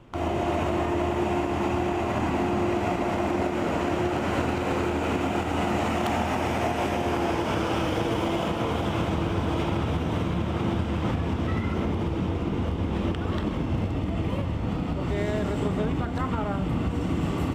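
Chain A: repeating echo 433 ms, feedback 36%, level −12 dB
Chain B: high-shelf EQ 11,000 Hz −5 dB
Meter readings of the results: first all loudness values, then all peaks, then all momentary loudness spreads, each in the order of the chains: −26.5, −27.0 LKFS; −13.0, −14.5 dBFS; 2, 2 LU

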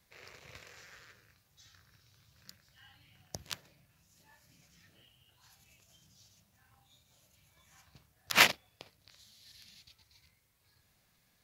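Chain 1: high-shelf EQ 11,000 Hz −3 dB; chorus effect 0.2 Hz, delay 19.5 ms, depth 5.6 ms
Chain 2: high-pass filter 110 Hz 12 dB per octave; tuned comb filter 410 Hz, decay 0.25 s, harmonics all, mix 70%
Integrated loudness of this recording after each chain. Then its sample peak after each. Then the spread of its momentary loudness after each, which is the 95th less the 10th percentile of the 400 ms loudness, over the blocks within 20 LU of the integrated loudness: −31.5, −37.5 LKFS; −10.5, −14.5 dBFS; 20, 20 LU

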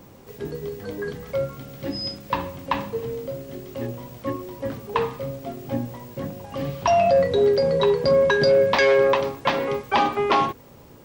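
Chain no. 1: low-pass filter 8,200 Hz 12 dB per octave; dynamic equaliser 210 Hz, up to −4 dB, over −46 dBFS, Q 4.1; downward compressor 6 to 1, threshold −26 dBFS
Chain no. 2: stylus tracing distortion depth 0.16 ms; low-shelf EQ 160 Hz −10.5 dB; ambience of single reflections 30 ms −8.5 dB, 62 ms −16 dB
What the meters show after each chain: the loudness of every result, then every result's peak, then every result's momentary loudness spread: −31.0, −23.5 LKFS; −13.5, −5.5 dBFS; 8, 17 LU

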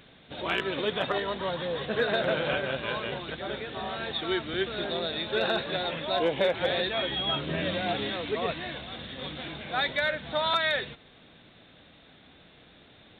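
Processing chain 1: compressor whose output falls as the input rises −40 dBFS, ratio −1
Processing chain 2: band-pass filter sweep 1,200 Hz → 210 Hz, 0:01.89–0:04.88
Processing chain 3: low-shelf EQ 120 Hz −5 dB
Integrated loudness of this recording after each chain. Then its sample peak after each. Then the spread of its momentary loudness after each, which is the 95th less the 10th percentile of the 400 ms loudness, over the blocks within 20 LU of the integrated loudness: −38.0, −40.5, −29.5 LKFS; −20.0, −21.5, −16.0 dBFS; 13, 11, 10 LU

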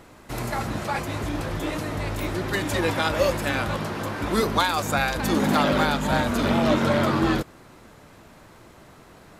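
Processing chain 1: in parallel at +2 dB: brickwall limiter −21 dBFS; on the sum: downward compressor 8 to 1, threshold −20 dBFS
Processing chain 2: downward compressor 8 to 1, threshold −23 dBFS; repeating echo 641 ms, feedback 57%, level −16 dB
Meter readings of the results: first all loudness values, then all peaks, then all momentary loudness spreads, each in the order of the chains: −24.5, −28.0 LKFS; −11.0, −13.0 dBFS; 18, 17 LU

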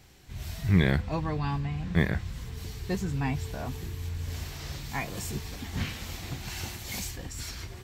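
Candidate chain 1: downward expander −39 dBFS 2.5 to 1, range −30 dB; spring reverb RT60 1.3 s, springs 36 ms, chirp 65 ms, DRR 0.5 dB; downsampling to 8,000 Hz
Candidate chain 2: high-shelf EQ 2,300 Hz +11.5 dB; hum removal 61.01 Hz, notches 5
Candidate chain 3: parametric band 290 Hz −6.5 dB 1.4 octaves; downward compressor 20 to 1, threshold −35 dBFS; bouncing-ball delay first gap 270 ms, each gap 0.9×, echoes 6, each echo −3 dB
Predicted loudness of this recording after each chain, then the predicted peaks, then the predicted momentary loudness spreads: −29.5, −29.5, −37.5 LKFS; −7.5, −6.5, −22.5 dBFS; 12, 9, 2 LU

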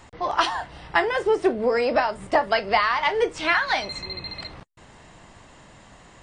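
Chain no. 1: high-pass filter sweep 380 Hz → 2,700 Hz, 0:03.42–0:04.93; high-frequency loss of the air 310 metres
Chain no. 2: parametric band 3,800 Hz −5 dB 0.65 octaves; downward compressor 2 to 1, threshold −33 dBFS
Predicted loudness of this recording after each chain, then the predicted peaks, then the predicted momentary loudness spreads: −20.5, −31.5 LKFS; −4.0, −13.5 dBFS; 18, 20 LU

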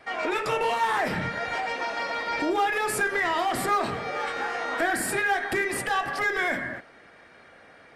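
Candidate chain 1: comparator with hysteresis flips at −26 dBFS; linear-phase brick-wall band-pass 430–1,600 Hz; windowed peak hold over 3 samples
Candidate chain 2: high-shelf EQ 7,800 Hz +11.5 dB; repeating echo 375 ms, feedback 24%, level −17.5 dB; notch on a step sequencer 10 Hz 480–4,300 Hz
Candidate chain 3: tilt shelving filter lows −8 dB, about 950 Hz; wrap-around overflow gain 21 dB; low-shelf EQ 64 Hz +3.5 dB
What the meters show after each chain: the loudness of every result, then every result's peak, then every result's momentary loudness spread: −33.0, −27.5, −25.0 LKFS; −22.0, −13.0, −20.0 dBFS; 4, 7, 3 LU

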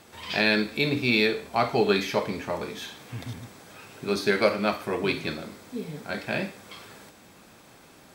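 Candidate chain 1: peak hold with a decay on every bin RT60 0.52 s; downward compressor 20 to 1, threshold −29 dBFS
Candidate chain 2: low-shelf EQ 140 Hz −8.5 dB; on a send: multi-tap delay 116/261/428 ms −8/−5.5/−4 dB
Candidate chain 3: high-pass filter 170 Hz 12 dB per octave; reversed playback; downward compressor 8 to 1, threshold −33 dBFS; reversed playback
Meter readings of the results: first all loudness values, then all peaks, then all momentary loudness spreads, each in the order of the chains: −35.0, −24.5, −38.0 LKFS; −15.5, −6.5, −21.5 dBFS; 14, 16, 14 LU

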